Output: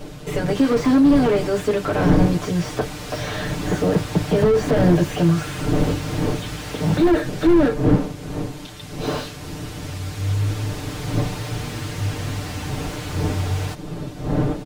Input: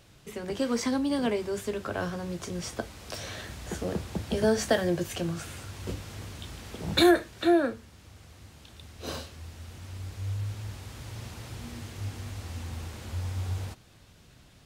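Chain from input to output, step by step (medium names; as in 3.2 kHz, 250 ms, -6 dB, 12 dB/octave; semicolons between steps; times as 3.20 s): wind noise 310 Hz -40 dBFS; comb 6.7 ms, depth 98%; loudness maximiser +11 dB; slew-rate limiter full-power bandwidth 91 Hz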